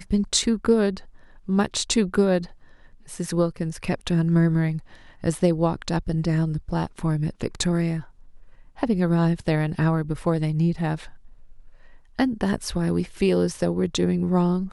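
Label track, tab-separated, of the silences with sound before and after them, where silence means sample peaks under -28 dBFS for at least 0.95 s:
10.960000	12.190000	silence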